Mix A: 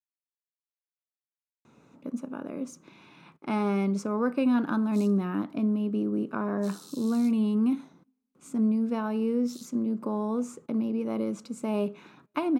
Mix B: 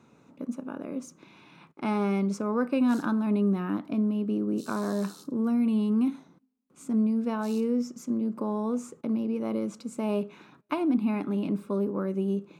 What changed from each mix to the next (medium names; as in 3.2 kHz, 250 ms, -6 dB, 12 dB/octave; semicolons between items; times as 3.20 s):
speech: entry -1.65 s; background: entry -2.05 s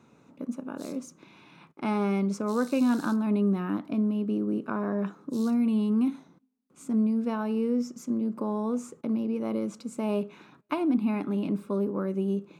background: entry -2.10 s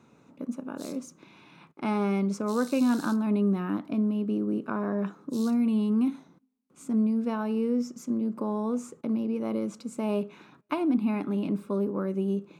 background +3.0 dB